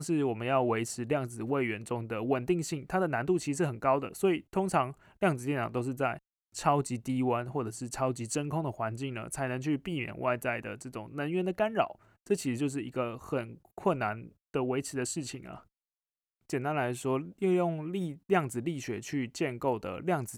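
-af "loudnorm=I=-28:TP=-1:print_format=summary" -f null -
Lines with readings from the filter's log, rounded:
Input Integrated:    -32.2 LUFS
Input True Peak:     -12.3 dBTP
Input LRA:             3.2 LU
Input Threshold:     -42.4 LUFS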